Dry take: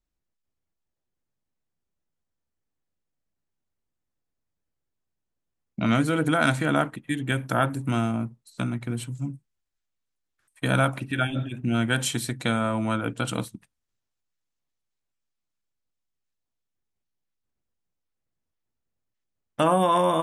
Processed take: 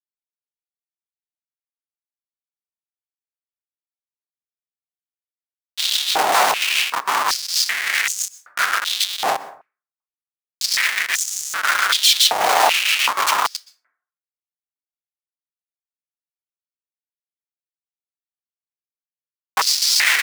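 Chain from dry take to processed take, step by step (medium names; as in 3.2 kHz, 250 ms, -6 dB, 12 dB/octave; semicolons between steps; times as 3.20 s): square wave that keeps the level; peaking EQ 6.3 kHz +8 dB 0.42 oct; comb 6.7 ms, depth 90%; compression 1.5:1, threshold -21 dBFS, peak gain reduction 5 dB; rotary cabinet horn 7.5 Hz; harmony voices -5 st -1 dB, +5 st -4 dB, +7 st -16 dB; Schmitt trigger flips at -29 dBFS; plate-style reverb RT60 0.53 s, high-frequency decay 0.45×, pre-delay 110 ms, DRR 16 dB; step-sequenced high-pass 2.6 Hz 770–6600 Hz; trim +7 dB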